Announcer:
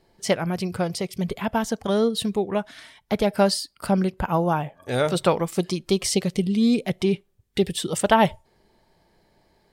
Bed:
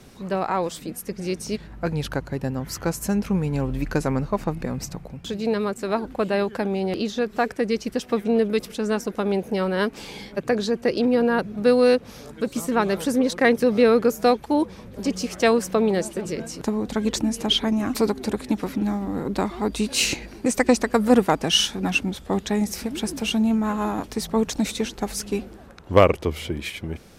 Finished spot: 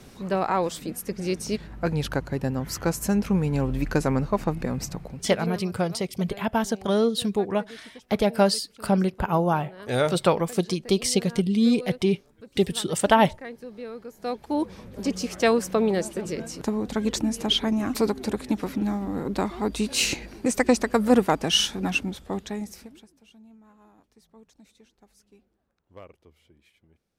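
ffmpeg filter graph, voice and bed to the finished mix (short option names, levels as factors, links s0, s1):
-filter_complex "[0:a]adelay=5000,volume=0.944[s0];[1:a]volume=8.91,afade=t=out:st=5.08:d=0.56:silence=0.0891251,afade=t=in:st=14.15:d=0.6:silence=0.112202,afade=t=out:st=21.81:d=1.27:silence=0.0354813[s1];[s0][s1]amix=inputs=2:normalize=0"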